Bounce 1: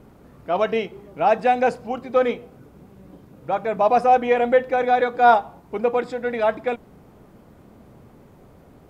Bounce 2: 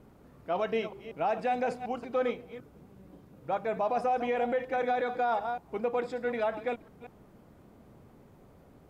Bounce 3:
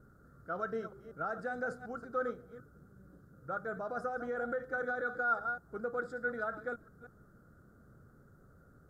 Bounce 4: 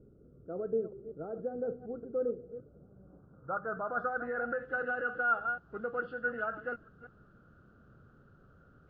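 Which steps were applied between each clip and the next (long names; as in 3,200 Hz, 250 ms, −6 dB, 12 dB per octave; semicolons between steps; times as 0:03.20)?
delay that plays each chunk backwards 186 ms, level −13.5 dB; brickwall limiter −13.5 dBFS, peak gain reduction 9.5 dB; level −7.5 dB
drawn EQ curve 140 Hz 0 dB, 260 Hz −6 dB, 520 Hz −5 dB, 970 Hz −16 dB, 1,400 Hz +11 dB, 2,500 Hz −30 dB, 3,900 Hz −12 dB, 7,100 Hz −4 dB; level −2 dB
hearing-aid frequency compression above 1,600 Hz 1.5 to 1; low-pass filter sweep 430 Hz → 2,600 Hz, 0:02.33–0:04.69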